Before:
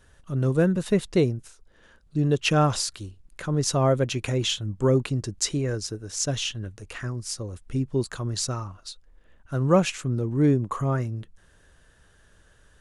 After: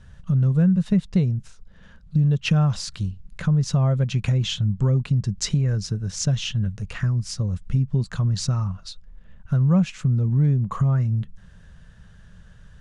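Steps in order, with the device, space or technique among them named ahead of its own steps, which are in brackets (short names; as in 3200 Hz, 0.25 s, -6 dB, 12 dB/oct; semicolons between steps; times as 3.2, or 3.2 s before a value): jukebox (LPF 6200 Hz 12 dB/oct; resonant low shelf 240 Hz +8.5 dB, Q 3; compressor 3:1, threshold -22 dBFS, peak gain reduction 12 dB); gain +2.5 dB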